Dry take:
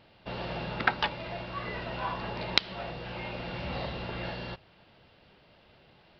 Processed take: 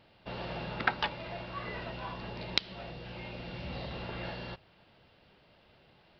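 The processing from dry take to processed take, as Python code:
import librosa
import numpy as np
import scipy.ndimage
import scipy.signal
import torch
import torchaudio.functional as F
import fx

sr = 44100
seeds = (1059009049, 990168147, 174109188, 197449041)

y = fx.peak_eq(x, sr, hz=1100.0, db=-5.5, octaves=2.2, at=(1.91, 3.91))
y = y * 10.0 ** (-3.0 / 20.0)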